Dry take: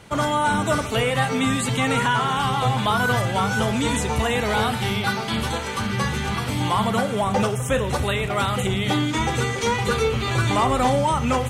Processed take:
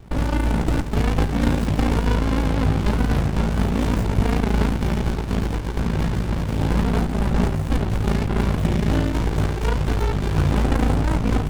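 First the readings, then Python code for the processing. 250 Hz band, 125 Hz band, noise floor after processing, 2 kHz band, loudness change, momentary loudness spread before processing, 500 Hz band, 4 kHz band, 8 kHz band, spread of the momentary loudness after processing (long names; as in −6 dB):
+2.5 dB, +3.5 dB, −25 dBFS, −7.5 dB, 0.0 dB, 4 LU, −3.5 dB, −8.5 dB, −9.0 dB, 3 LU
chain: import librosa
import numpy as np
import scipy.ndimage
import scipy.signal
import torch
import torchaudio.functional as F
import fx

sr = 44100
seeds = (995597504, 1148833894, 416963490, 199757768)

y = x * np.sin(2.0 * np.pi * 28.0 * np.arange(len(x)) / sr)
y = fx.running_max(y, sr, window=65)
y = F.gain(torch.from_numpy(y), 6.0).numpy()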